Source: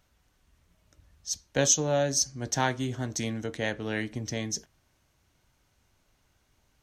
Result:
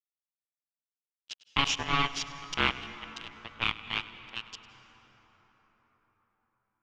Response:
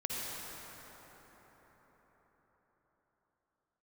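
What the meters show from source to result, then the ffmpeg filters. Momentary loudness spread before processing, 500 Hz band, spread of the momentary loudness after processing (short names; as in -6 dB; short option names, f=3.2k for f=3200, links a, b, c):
11 LU, -14.5 dB, 18 LU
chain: -filter_complex "[0:a]highpass=230,acrusher=bits=3:mix=0:aa=0.5,aeval=exprs='val(0)*sin(2*PI*560*n/s)':c=same,lowpass=f=3k:t=q:w=4.7,asplit=2[a][b];[1:a]atrim=start_sample=2205,adelay=101[c];[b][c]afir=irnorm=-1:irlink=0,volume=-16.5dB[d];[a][d]amix=inputs=2:normalize=0"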